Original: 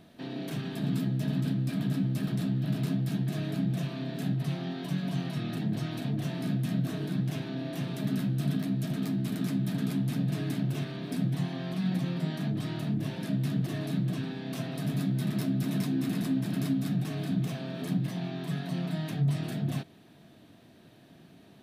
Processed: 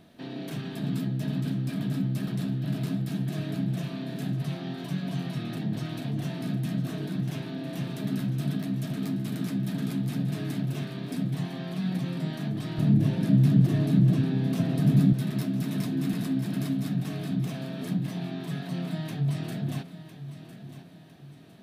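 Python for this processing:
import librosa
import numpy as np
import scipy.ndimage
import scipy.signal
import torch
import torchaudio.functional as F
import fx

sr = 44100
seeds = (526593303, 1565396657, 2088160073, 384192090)

y = fx.low_shelf(x, sr, hz=400.0, db=11.5, at=(12.78, 15.13))
y = fx.echo_feedback(y, sr, ms=1005, feedback_pct=40, wet_db=-13)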